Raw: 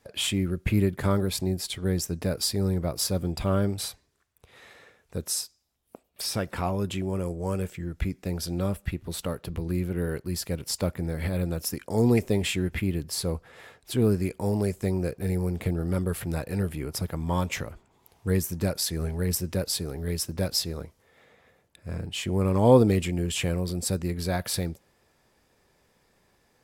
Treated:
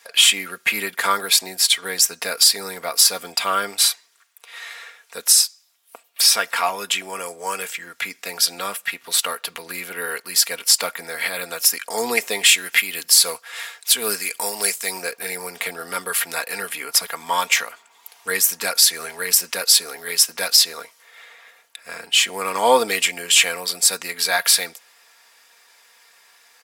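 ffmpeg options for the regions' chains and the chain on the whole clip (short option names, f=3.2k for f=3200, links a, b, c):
-filter_complex "[0:a]asettb=1/sr,asplit=3[a][b][c];[a]atrim=end=12.464[d];[b]atrim=start=12.46:end=15.02,asetpts=PTS-STARTPTS,afade=t=in:d=0.004:c=qsin,afade=t=out:st=2.556:d=0.004:c=qsin,highshelf=f=3k:g=8.5,tremolo=f=3.6:d=0.41[e];[c]atrim=start=15.016[f];[d][e]acrossfade=d=0.004:c1=hsin:c2=qsin[g];[g][f]acrossfade=d=0.004:c1=qsin:c2=hsin,highpass=1.3k,aecho=1:1:4.3:0.49,alimiter=level_in=17.5dB:limit=-1dB:release=50:level=0:latency=1,volume=-1dB"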